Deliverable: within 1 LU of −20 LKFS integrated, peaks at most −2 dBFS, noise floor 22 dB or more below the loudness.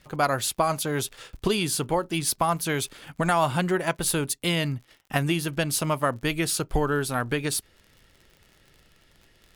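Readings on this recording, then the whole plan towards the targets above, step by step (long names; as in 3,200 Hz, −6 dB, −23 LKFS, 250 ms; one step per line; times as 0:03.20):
crackle rate 45 per second; integrated loudness −26.0 LKFS; sample peak −8.5 dBFS; target loudness −20.0 LKFS
→ click removal
level +6 dB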